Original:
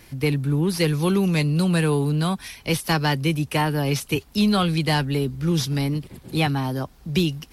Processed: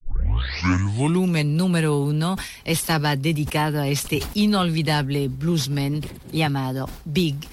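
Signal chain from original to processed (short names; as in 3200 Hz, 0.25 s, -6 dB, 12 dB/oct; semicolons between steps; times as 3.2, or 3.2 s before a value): tape start at the beginning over 1.28 s; sustainer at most 88 dB/s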